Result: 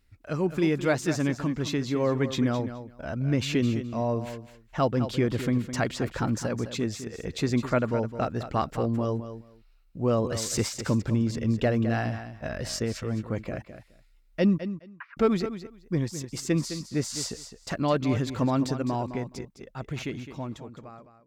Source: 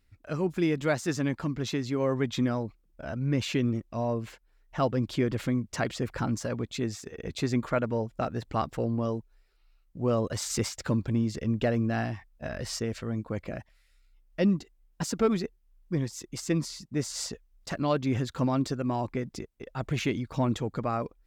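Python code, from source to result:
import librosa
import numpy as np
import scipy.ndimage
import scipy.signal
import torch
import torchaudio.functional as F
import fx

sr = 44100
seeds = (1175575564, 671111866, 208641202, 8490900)

p1 = fx.fade_out_tail(x, sr, length_s=2.71)
p2 = fx.ellip_bandpass(p1, sr, low_hz=1100.0, high_hz=2400.0, order=3, stop_db=60, at=(14.58, 15.17))
p3 = p2 + fx.echo_feedback(p2, sr, ms=210, feedback_pct=16, wet_db=-11.0, dry=0)
y = p3 * librosa.db_to_amplitude(2.0)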